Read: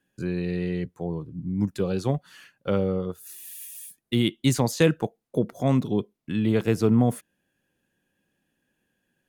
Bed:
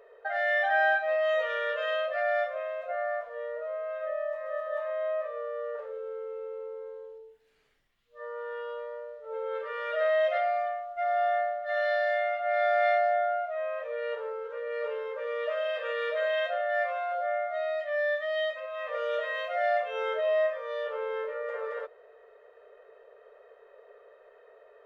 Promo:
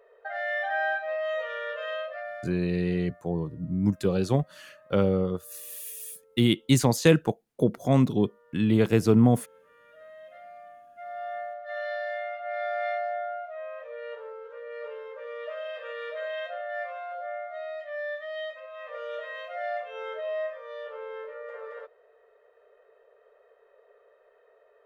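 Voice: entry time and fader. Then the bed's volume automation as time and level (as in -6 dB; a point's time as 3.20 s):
2.25 s, +1.0 dB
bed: 2.01 s -3.5 dB
2.83 s -23 dB
10.18 s -23 dB
11.55 s -5.5 dB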